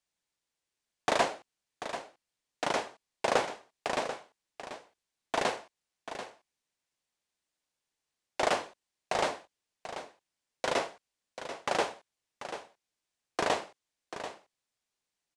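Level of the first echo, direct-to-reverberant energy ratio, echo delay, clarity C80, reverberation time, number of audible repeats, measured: -11.0 dB, no reverb, 738 ms, no reverb, no reverb, 1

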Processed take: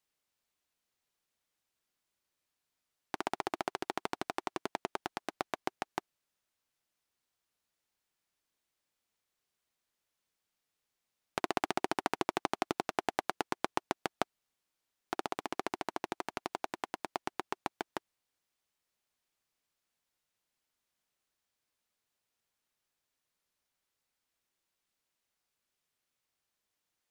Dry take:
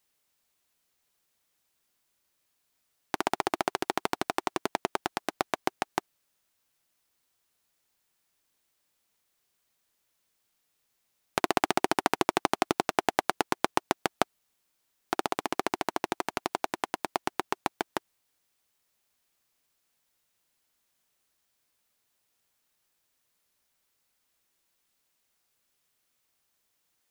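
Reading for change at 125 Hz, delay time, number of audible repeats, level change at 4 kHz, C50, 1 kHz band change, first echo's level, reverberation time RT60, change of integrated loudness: -7.0 dB, no echo, no echo, -8.0 dB, no reverb, -7.0 dB, no echo, no reverb, -7.0 dB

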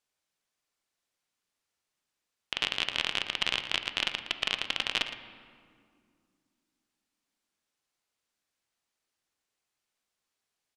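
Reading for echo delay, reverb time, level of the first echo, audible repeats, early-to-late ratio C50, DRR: 114 ms, 2.2 s, -12.5 dB, 1, 8.5 dB, 7.5 dB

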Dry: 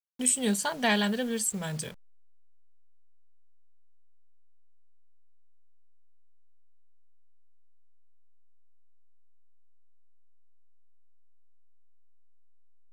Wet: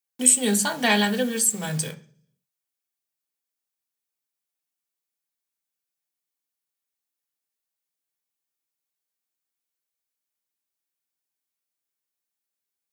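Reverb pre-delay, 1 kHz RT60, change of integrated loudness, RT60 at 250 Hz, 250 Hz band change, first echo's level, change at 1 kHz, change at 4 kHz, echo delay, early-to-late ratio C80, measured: 3 ms, 0.40 s, +7.0 dB, 0.70 s, +4.5 dB, no echo, +5.0 dB, +6.0 dB, no echo, 20.0 dB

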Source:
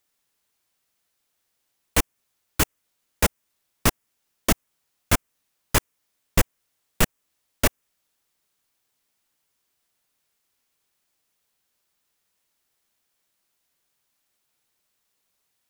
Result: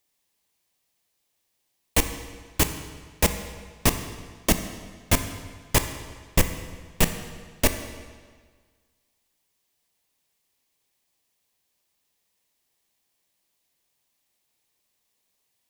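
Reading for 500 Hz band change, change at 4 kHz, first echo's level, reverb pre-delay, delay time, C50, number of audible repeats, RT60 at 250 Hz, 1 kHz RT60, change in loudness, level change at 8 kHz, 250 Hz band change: +0.5 dB, +0.5 dB, no echo, 21 ms, no echo, 9.5 dB, no echo, 1.6 s, 1.6 s, -0.5 dB, +0.5 dB, +0.5 dB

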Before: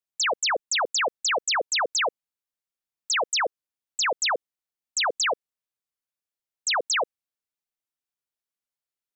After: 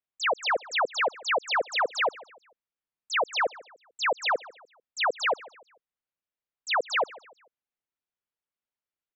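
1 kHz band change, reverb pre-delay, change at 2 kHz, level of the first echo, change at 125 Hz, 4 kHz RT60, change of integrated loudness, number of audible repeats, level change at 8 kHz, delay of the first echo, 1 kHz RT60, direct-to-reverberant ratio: 0.0 dB, no reverb, -1.0 dB, -21.0 dB, no reading, no reverb, -2.5 dB, 2, -15.5 dB, 147 ms, no reverb, no reverb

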